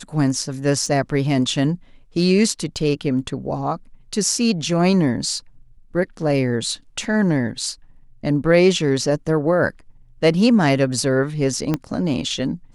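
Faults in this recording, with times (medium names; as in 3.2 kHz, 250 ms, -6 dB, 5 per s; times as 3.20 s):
0.86 s: dropout 2.8 ms
11.74 s: pop -8 dBFS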